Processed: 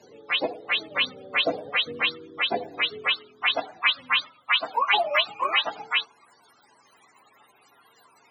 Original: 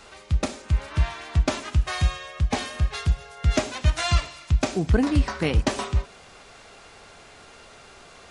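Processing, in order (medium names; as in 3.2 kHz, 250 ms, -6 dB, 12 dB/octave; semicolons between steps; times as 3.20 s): spectrum inverted on a logarithmic axis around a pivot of 420 Hz; high-pass sweep 500 Hz -> 1 kHz, 2.96–3.78 s; trim +3.5 dB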